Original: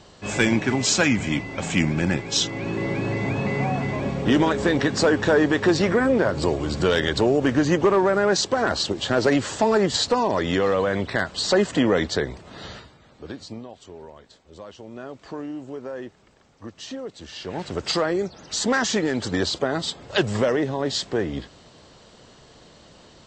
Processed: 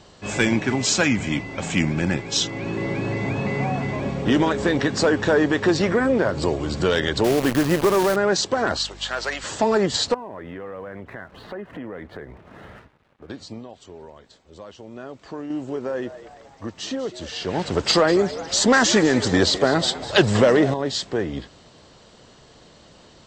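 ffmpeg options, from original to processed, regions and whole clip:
ffmpeg -i in.wav -filter_complex "[0:a]asettb=1/sr,asplit=3[link_01][link_02][link_03];[link_01]atrim=end=7.244[link_04];[link_02]atrim=start=7.24:end=8.16,asetpts=PTS-STARTPTS,afade=type=in:duration=0.004:curve=qsin,afade=type=out:start_time=0.916:duration=0.004:curve=qsin,lowpass=3300,acrusher=bits=5:dc=4:mix=0:aa=0.000001[link_05];[link_03]atrim=start=8.156[link_06];[link_04][link_05]acrossfade=duration=0.004:curve1=hsin:curve2=qsin[link_07];[link_07][link_06]acrossfade=duration=0.004:curve1=qsin:curve2=hsin,asettb=1/sr,asplit=3[link_08][link_09][link_10];[link_08]atrim=end=8.774[link_11];[link_09]atrim=start=8.77:end=9.44,asetpts=PTS-STARTPTS,afade=type=in:duration=0.004:curve=qsin,afade=type=out:start_time=0.666:duration=0.004:curve=qsin,highpass=950,aeval=exprs='val(0)+0.00794*(sin(2*PI*50*n/s)+sin(2*PI*2*50*n/s)/2+sin(2*PI*3*50*n/s)/3+sin(2*PI*4*50*n/s)/4+sin(2*PI*5*50*n/s)/5)':channel_layout=same[link_12];[link_10]atrim=start=9.436[link_13];[link_11][link_12]acrossfade=duration=0.004:curve1=hsin:curve2=qsin[link_14];[link_14][link_13]acrossfade=duration=0.004:curve1=qsin:curve2=hsin,asettb=1/sr,asplit=3[link_15][link_16][link_17];[link_15]atrim=end=10.144[link_18];[link_16]atrim=start=10.14:end=13.3,asetpts=PTS-STARTPTS,afade=type=in:duration=0.004:curve=qsin,afade=type=out:start_time=3.156:duration=0.004:curve=qsin,lowpass=frequency=2300:width=0.5412,lowpass=frequency=2300:width=1.3066,aeval=exprs='sgn(val(0))*max(abs(val(0))-0.00224,0)':channel_layout=same,acompressor=threshold=-38dB:ratio=2.5:attack=3.2:release=140:knee=1:detection=peak[link_19];[link_17]atrim=start=13.296[link_20];[link_18][link_19]acrossfade=duration=0.004:curve1=hsin:curve2=qsin[link_21];[link_21][link_20]acrossfade=duration=0.004:curve1=qsin:curve2=hsin,asettb=1/sr,asplit=3[link_22][link_23][link_24];[link_22]atrim=end=15.504[link_25];[link_23]atrim=start=15.5:end=20.74,asetpts=PTS-STARTPTS,afade=type=in:duration=0.004:curve=qsin,afade=type=out:start_time=5.236:duration=0.004:curve=qsin,acontrast=48,asplit=6[link_26][link_27][link_28][link_29][link_30][link_31];[link_27]adelay=199,afreqshift=96,volume=-15dB[link_32];[link_28]adelay=398,afreqshift=192,volume=-20.7dB[link_33];[link_29]adelay=597,afreqshift=288,volume=-26.4dB[link_34];[link_30]adelay=796,afreqshift=384,volume=-32dB[link_35];[link_31]adelay=995,afreqshift=480,volume=-37.7dB[link_36];[link_26][link_32][link_33][link_34][link_35][link_36]amix=inputs=6:normalize=0,atrim=end_sample=231084[link_37];[link_24]atrim=start=20.736[link_38];[link_25][link_37]acrossfade=duration=0.004:curve1=hsin:curve2=qsin[link_39];[link_39][link_38]acrossfade=duration=0.004:curve1=qsin:curve2=hsin" out.wav

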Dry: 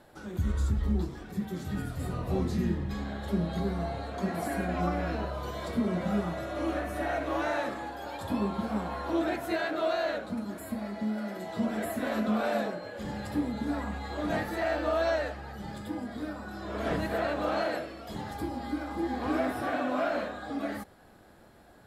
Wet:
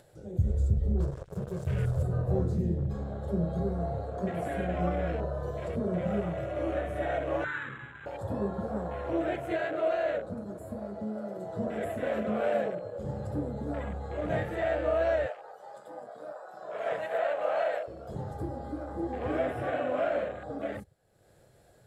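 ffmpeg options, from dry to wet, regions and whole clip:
ffmpeg -i in.wav -filter_complex "[0:a]asettb=1/sr,asplit=3[link_01][link_02][link_03];[link_01]atrim=end=1.004[link_04];[link_02]atrim=start=1:end=2.03,asetpts=PTS-STARTPTS,afade=type=in:duration=0.004:curve=qsin,afade=type=out:start_time=1.026:duration=0.004:curve=qsin,aecho=1:1:1.9:0.85,atrim=end_sample=45423,bandreject=frequency=50.03:width_type=h:width=4,bandreject=frequency=100.06:width_type=h:width=4,bandreject=frequency=150.09:width_type=h:width=4,bandreject=frequency=200.12:width_type=h:width=4,acrusher=bits=5:mix=0:aa=0.5[link_05];[link_03]atrim=start=2.026[link_06];[link_04][link_05]acrossfade=duration=0.004:curve1=hsin:curve2=qsin[link_07];[link_07][link_06]acrossfade=duration=0.004:curve1=qsin:curve2=hsin,asettb=1/sr,asplit=3[link_08][link_09][link_10];[link_08]atrim=end=7.444[link_11];[link_09]atrim=start=7.44:end=8.06,asetpts=PTS-STARTPTS,afade=type=in:duration=0.004:curve=qsin,afade=type=out:start_time=0.616:duration=0.004:curve=qsin,asuperstop=centerf=660:order=4:qfactor=0.75,highpass=120,equalizer=frequency=120:width_type=q:width=4:gain=9,equalizer=frequency=180:width_type=q:width=4:gain=-8,equalizer=frequency=320:width_type=q:width=4:gain=-8,equalizer=frequency=450:width_type=q:width=4:gain=-4,equalizer=frequency=1000:width_type=q:width=4:gain=8,equalizer=frequency=1500:width_type=q:width=4:gain=8,lowpass=frequency=2500:width=0.5412,lowpass=frequency=2500:width=1.3066[link_12];[link_10]atrim=start=8.056[link_13];[link_11][link_12]acrossfade=duration=0.004:curve1=hsin:curve2=qsin[link_14];[link_14][link_13]acrossfade=duration=0.004:curve1=qsin:curve2=hsin,asettb=1/sr,asplit=3[link_15][link_16][link_17];[link_15]atrim=end=15.264[link_18];[link_16]atrim=start=15.26:end=17.88,asetpts=PTS-STARTPTS,afade=type=in:duration=0.004:curve=qsin,afade=type=out:start_time=2.616:duration=0.004:curve=qsin,highpass=220,lowshelf=frequency=470:width_type=q:width=1.5:gain=-11[link_19];[link_17]atrim=start=17.876[link_20];[link_18][link_19]acrossfade=duration=0.004:curve1=hsin:curve2=qsin[link_21];[link_21][link_20]acrossfade=duration=0.004:curve1=qsin:curve2=hsin,afwtdn=0.00891,equalizer=frequency=125:width_type=o:width=1:gain=11,equalizer=frequency=250:width_type=o:width=1:gain=-10,equalizer=frequency=500:width_type=o:width=1:gain=9,equalizer=frequency=1000:width_type=o:width=1:gain=-7,equalizer=frequency=8000:width_type=o:width=1:gain=9,acompressor=mode=upward:threshold=-48dB:ratio=2.5,volume=-1dB" out.wav

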